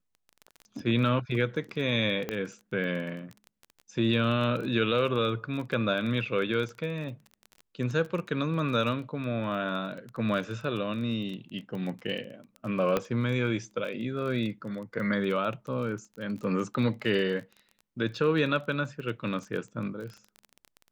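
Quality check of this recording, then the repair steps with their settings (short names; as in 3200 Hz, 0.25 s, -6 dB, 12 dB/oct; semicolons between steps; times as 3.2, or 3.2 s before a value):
crackle 20/s -35 dBFS
2.29 pop -17 dBFS
12.97 pop -13 dBFS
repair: de-click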